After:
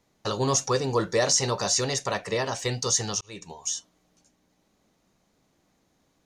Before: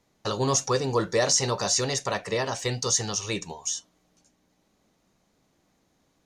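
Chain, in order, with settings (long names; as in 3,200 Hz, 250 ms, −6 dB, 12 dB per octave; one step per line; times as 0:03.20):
0:00.77–0:02.09: floating-point word with a short mantissa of 8 bits
0:03.21–0:03.68: fade in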